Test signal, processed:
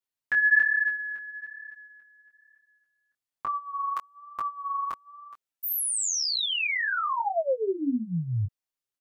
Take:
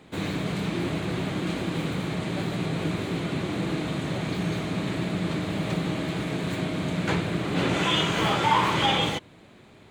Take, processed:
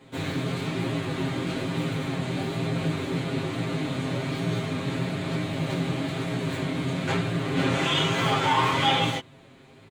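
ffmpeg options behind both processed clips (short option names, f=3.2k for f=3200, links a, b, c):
-af "flanger=delay=17:depth=6.4:speed=1.1,aecho=1:1:7.5:0.99"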